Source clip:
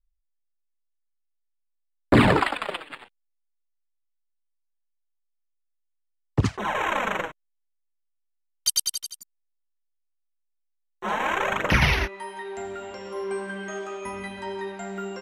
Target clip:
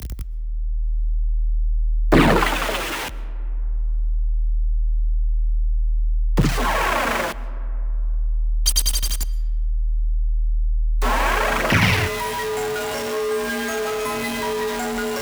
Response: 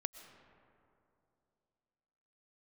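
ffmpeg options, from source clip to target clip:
-filter_complex "[0:a]aeval=exprs='val(0)+0.5*0.075*sgn(val(0))':c=same,asplit=2[a][b];[1:a]atrim=start_sample=2205[c];[b][c]afir=irnorm=-1:irlink=0,volume=-5dB[d];[a][d]amix=inputs=2:normalize=0,afreqshift=39,volume=-2.5dB"

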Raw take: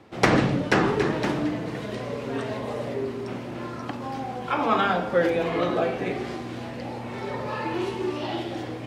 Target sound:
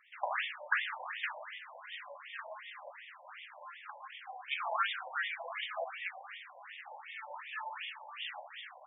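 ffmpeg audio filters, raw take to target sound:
-af "aderivative,afftfilt=real='re*between(b*sr/1024,710*pow(2600/710,0.5+0.5*sin(2*PI*2.7*pts/sr))/1.41,710*pow(2600/710,0.5+0.5*sin(2*PI*2.7*pts/sr))*1.41)':imag='im*between(b*sr/1024,710*pow(2600/710,0.5+0.5*sin(2*PI*2.7*pts/sr))/1.41,710*pow(2600/710,0.5+0.5*sin(2*PI*2.7*pts/sr))*1.41)':win_size=1024:overlap=0.75,volume=9.5dB"

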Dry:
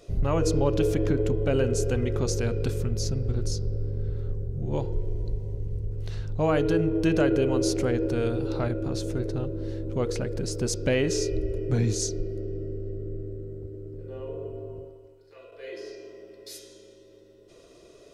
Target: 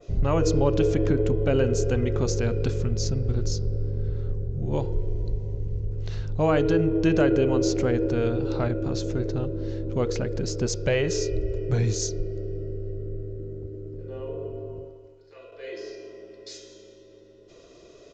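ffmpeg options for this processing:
-filter_complex "[0:a]adynamicequalizer=threshold=0.00501:dfrequency=4700:dqfactor=0.73:tfrequency=4700:tqfactor=0.73:attack=5:release=100:ratio=0.375:range=1.5:mode=cutabove:tftype=bell,aresample=16000,aresample=44100,asettb=1/sr,asplit=3[a][b][c];[a]atrim=end=10.664[d];[b]atrim=start=10.66:end=13.4,asetpts=PTS-STARTPTS,afade=t=in:d=0.004:c=qsin,afade=t=out:st=2.736:d=0.004:c=qsin,equalizer=f=260:t=o:w=0.38:g=-13.5[e];[c]atrim=start=13.396[f];[d][e]acrossfade=d=0.004:c1=hsin:c2=qsin[g];[g][f]acrossfade=d=0.004:c1=qsin:c2=hsin,volume=2dB"

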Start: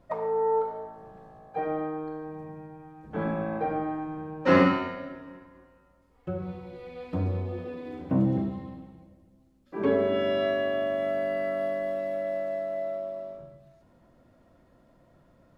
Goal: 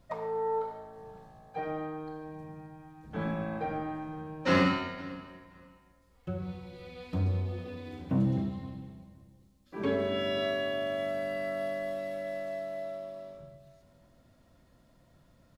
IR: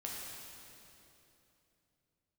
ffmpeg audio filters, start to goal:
-filter_complex "[0:a]firequalizer=gain_entry='entry(100,0);entry(340,-7);entry(3900,5)':delay=0.05:min_phase=1,asplit=2[a][b];[b]asoftclip=type=hard:threshold=-24dB,volume=-8dB[c];[a][c]amix=inputs=2:normalize=0,asplit=2[d][e];[e]adelay=519,lowpass=f=4k:p=1,volume=-20dB,asplit=2[f][g];[g]adelay=519,lowpass=f=4k:p=1,volume=0.23[h];[d][f][h]amix=inputs=3:normalize=0,volume=-2.5dB"

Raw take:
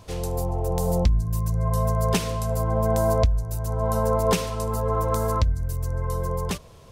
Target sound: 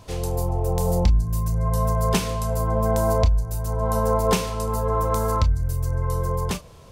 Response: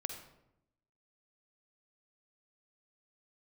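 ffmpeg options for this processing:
-filter_complex "[1:a]atrim=start_sample=2205,atrim=end_sample=3528,asetrate=83790,aresample=44100[a];[0:a][a]afir=irnorm=-1:irlink=0,volume=8dB"

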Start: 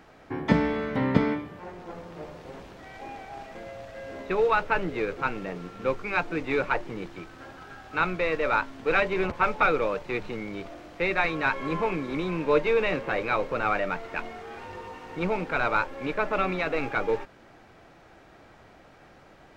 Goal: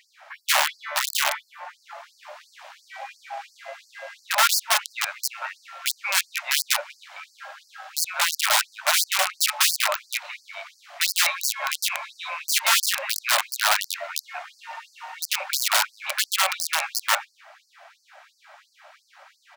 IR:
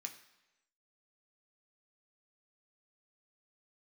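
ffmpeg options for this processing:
-filter_complex "[0:a]asplit=2[a][b];[b]adelay=190,highpass=300,lowpass=3.4k,asoftclip=type=hard:threshold=-17dB,volume=-12dB[c];[a][c]amix=inputs=2:normalize=0,aeval=exprs='(mod(8.91*val(0)+1,2)-1)/8.91':c=same,afftfilt=real='re*gte(b*sr/1024,520*pow(4400/520,0.5+0.5*sin(2*PI*2.9*pts/sr)))':imag='im*gte(b*sr/1024,520*pow(4400/520,0.5+0.5*sin(2*PI*2.9*pts/sr)))':win_size=1024:overlap=0.75,volume=7dB"

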